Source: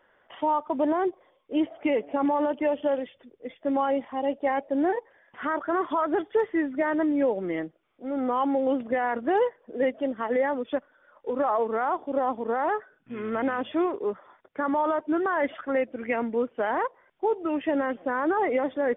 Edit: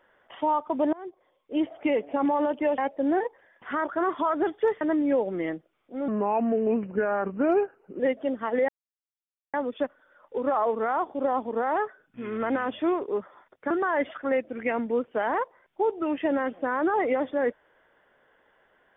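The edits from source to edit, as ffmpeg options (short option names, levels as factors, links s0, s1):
-filter_complex "[0:a]asplit=8[s0][s1][s2][s3][s4][s5][s6][s7];[s0]atrim=end=0.93,asetpts=PTS-STARTPTS,afade=t=out:st=0.926:d=0.004:c=hsin:silence=0.0749894[s8];[s1]atrim=start=0.93:end=2.782,asetpts=PTS-STARTPTS,afade=t=in:d=0.76:silence=0.0749894[s9];[s2]atrim=start=4.498:end=6.532[s10];[s3]atrim=start=6.908:end=8.184[s11];[s4]atrim=start=8.18:end=9.77,asetpts=PTS-STARTPTS,asetrate=36603,aresample=44100[s12];[s5]atrim=start=9.766:end=10.46,asetpts=PTS-STARTPTS,afade=t=out:st=0.69:d=0.004:c=hsin,apad=pad_dur=0.85[s13];[s6]atrim=start=10.46:end=14.632,asetpts=PTS-STARTPTS,afade=t=in:d=0.004:c=hsin[s14];[s7]atrim=start=15.138[s15];[s8][s9]concat=n=2:v=0:a=1[s16];[s16][s10]acrossfade=d=0.004:c1=hsin:c2=hsin[s17];[s17][s11]acrossfade=d=0.004:c1=hsin:c2=hsin[s18];[s18][s12]acrossfade=d=0.004:c1=hsin:c2=hsin[s19];[s13][s14]concat=n=2:v=0:a=1[s20];[s19][s20]acrossfade=d=0.004:c1=hsin:c2=hsin[s21];[s21][s15]acrossfade=d=0.004:c1=hsin:c2=hsin"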